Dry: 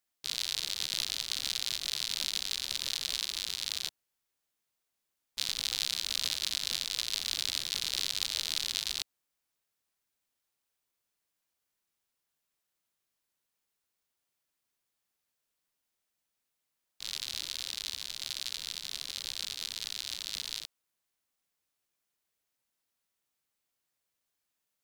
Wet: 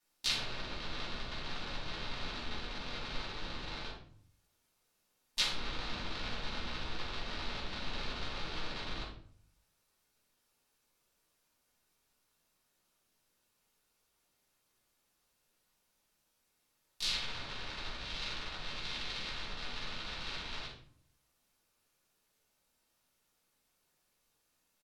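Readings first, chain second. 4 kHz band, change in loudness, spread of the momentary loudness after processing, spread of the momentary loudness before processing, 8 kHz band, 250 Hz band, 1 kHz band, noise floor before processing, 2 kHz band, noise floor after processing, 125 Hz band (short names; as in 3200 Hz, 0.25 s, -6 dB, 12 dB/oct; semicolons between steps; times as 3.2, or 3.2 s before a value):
-7.5 dB, -6.5 dB, 8 LU, 6 LU, -13.5 dB, +12.5 dB, +8.5 dB, -84 dBFS, +1.0 dB, -78 dBFS, n/a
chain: notch 2000 Hz, Q 15; treble ducked by the level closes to 1300 Hz, closed at -33.5 dBFS; doubler 38 ms -13 dB; shoebox room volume 690 m³, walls furnished, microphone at 9.5 m; gain -2.5 dB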